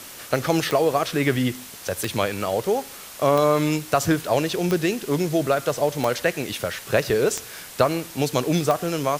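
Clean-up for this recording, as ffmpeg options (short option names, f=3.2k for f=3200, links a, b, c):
-af "adeclick=t=4,afwtdn=0.011"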